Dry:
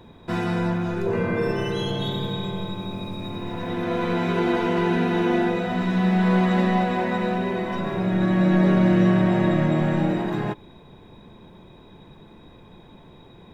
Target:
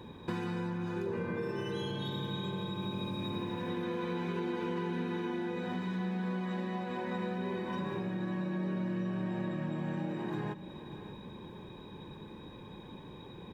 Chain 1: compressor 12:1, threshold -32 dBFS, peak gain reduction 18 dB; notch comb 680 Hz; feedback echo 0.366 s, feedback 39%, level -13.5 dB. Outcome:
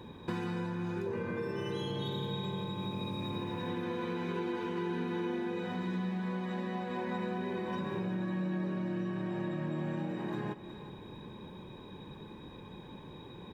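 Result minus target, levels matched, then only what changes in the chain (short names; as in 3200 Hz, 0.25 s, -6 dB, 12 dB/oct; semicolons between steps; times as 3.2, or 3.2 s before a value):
echo 0.222 s early
change: feedback echo 0.588 s, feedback 39%, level -13.5 dB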